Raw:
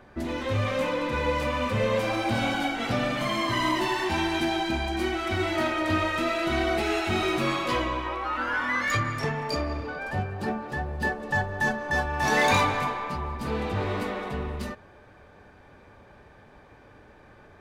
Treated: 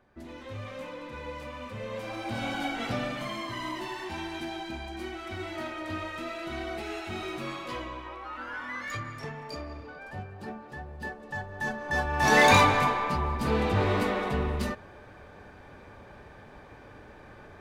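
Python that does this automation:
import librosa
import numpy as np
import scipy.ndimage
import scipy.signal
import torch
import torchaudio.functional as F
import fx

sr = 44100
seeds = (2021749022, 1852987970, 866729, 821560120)

y = fx.gain(x, sr, db=fx.line((1.82, -13.0), (2.77, -3.0), (3.54, -10.0), (11.41, -10.0), (12.36, 3.0)))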